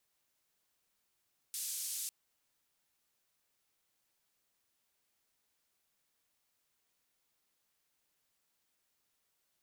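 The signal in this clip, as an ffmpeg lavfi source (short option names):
-f lavfi -i "anoisesrc=c=white:d=0.55:r=44100:seed=1,highpass=f=5400,lowpass=f=12000,volume=-29.8dB"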